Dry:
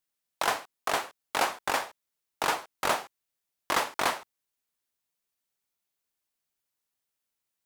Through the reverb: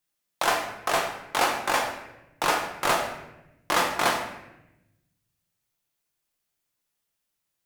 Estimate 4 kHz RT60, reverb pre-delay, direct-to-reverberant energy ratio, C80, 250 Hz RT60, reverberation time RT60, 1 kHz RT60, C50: 0.65 s, 6 ms, 1.0 dB, 8.0 dB, 1.4 s, 0.90 s, 0.80 s, 6.0 dB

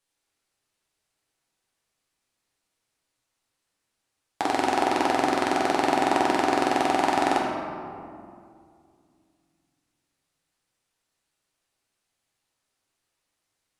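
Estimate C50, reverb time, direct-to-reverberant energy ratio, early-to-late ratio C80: 0.0 dB, 2.3 s, -3.5 dB, 1.5 dB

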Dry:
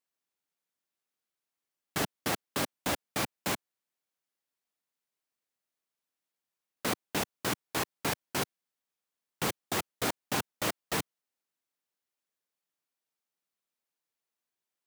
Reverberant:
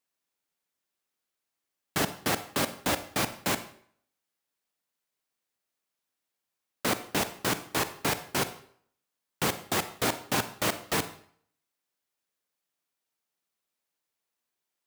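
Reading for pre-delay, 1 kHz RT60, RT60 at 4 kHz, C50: 35 ms, 0.60 s, 0.50 s, 13.0 dB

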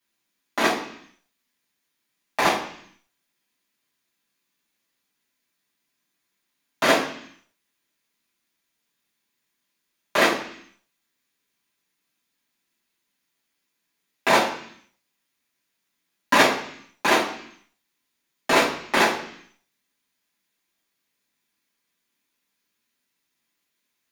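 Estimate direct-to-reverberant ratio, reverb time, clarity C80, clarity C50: -8.0 dB, 0.65 s, 10.5 dB, 7.0 dB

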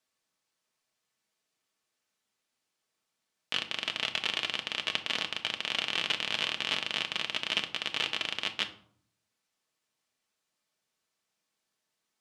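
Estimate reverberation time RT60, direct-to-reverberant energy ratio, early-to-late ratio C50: 0.60 s, 4.5 dB, 13.5 dB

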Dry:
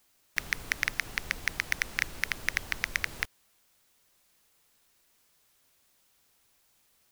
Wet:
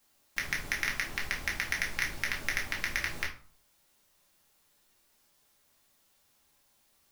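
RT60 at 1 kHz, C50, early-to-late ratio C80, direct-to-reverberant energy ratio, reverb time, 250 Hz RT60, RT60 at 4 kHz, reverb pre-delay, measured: 0.45 s, 9.0 dB, 13.5 dB, -3.0 dB, 0.45 s, 0.50 s, 0.30 s, 4 ms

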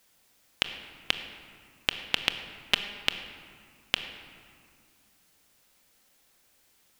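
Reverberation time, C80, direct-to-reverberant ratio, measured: 2.2 s, 9.5 dB, 7.0 dB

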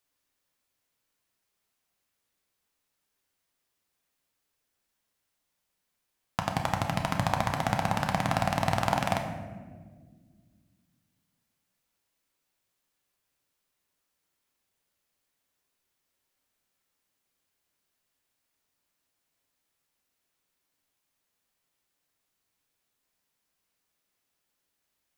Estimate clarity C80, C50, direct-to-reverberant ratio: 8.0 dB, 6.5 dB, 2.5 dB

